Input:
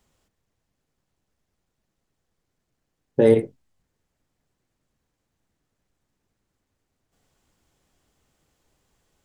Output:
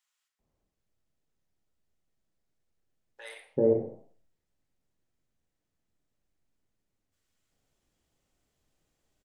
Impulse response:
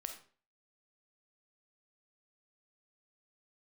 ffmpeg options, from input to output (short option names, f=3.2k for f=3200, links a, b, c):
-filter_complex "[0:a]flanger=delay=7.8:depth=8.6:regen=-87:speed=0.82:shape=sinusoidal,acrossover=split=1100[a][b];[a]adelay=390[c];[c][b]amix=inputs=2:normalize=0[d];[1:a]atrim=start_sample=2205[e];[d][e]afir=irnorm=-1:irlink=0,volume=-1dB"